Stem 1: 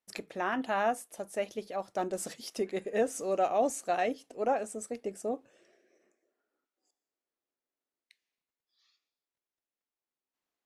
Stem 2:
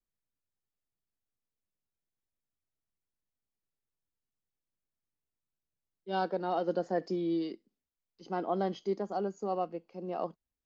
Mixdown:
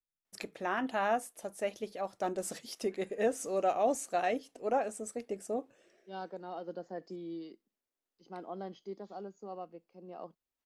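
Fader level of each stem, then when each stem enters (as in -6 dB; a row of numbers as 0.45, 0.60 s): -1.5, -10.5 dB; 0.25, 0.00 s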